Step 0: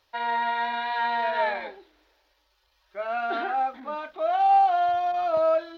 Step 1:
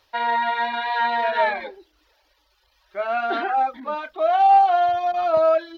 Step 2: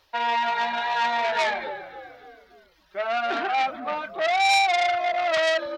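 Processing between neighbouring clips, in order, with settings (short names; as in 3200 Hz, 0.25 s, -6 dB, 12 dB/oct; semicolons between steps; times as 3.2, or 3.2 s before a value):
reverb removal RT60 0.63 s; gain +6 dB
frequency-shifting echo 0.285 s, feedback 48%, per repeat -55 Hz, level -15 dB; core saturation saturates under 3200 Hz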